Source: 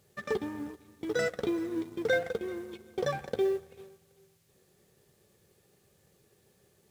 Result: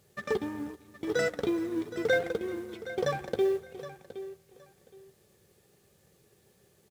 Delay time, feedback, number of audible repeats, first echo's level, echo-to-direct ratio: 0.768 s, 20%, 2, -14.0 dB, -14.0 dB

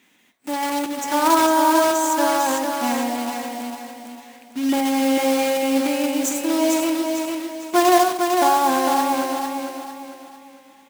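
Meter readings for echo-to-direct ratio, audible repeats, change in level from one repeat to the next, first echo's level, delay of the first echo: -4.0 dB, 4, -8.5 dB, -4.5 dB, 0.451 s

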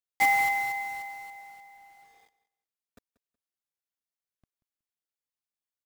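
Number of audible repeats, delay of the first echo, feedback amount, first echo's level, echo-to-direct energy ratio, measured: 2, 0.185 s, 25%, -18.0 dB, -17.5 dB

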